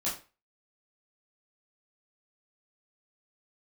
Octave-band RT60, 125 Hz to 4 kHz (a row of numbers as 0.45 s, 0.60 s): 0.35 s, 0.30 s, 0.35 s, 0.35 s, 0.30 s, 0.30 s